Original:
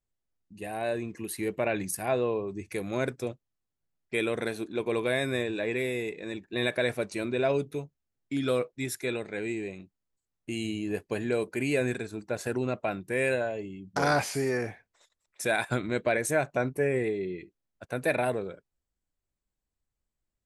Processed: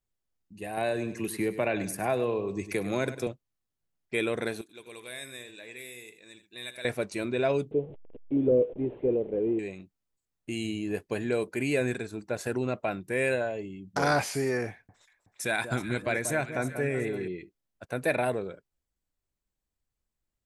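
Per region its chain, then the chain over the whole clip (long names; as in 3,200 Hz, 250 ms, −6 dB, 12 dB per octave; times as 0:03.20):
0:00.77–0:03.27: high-pass filter 51 Hz + repeating echo 100 ms, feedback 28%, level −14 dB + multiband upward and downward compressor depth 70%
0:04.61–0:06.85: first-order pre-emphasis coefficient 0.9 + single-tap delay 81 ms −12 dB
0:07.71–0:09.59: linear delta modulator 16 kbit/s, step −39.5 dBFS + drawn EQ curve 170 Hz 0 dB, 480 Hz +9 dB, 1,300 Hz −21 dB, 2,000 Hz −21 dB, 6,200 Hz −7 dB, 9,500 Hz +13 dB
0:14.70–0:17.28: parametric band 540 Hz −5 dB 1.2 octaves + delay that swaps between a low-pass and a high-pass 187 ms, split 1,200 Hz, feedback 62%, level −8.5 dB
whole clip: no processing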